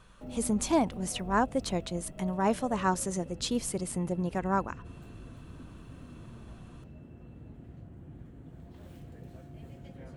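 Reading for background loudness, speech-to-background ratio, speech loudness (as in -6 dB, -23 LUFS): -47.0 LUFS, 16.0 dB, -31.0 LUFS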